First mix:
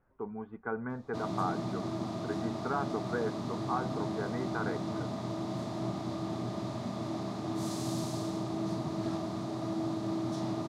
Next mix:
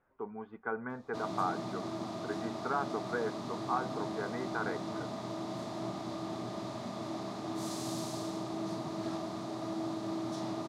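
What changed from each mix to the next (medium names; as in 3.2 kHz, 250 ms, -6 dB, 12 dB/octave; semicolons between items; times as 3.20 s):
speech: remove distance through air 210 m; master: add bass shelf 190 Hz -11 dB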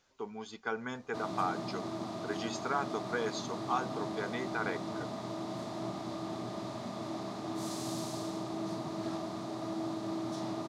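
speech: remove low-pass 1.7 kHz 24 dB/octave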